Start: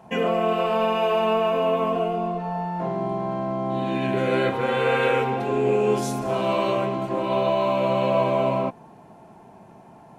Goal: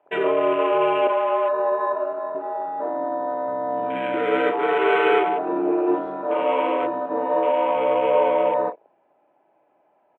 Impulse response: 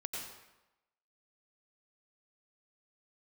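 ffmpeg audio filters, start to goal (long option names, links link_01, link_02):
-filter_complex "[0:a]highpass=frequency=400:width_type=q:width=0.5412,highpass=frequency=400:width_type=q:width=1.307,lowpass=frequency=3100:width_type=q:width=0.5176,lowpass=frequency=3100:width_type=q:width=0.7071,lowpass=frequency=3100:width_type=q:width=1.932,afreqshift=-67,asettb=1/sr,asplit=3[link_01][link_02][link_03];[link_01]atrim=end=1.074[link_04];[link_02]atrim=start=1.07:end=2.35,asetpts=PTS-STARTPTS,afade=type=in:duration=0.004:curve=qsin,afade=type=out:start_time=1.276:duration=0.004:curve=qsin,acrossover=split=470 2200:gain=0.0794 1 0.178[link_05][link_06][link_07];[link_05][link_06][link_07]amix=inputs=3:normalize=0[link_08];[link_03]atrim=start=2.346[link_09];[link_04][link_08]acrossfade=duration=0.004:curve1=hsin:curve2=qsin[link_10];[link_10][link_09]acrossfade=duration=0.004:curve1=qsin:curve2=hsin,asplit=2[link_11][link_12];[link_12]aecho=0:1:32|53:0.2|0.282[link_13];[link_11][link_13]amix=inputs=2:normalize=0,afwtdn=0.02,volume=3dB"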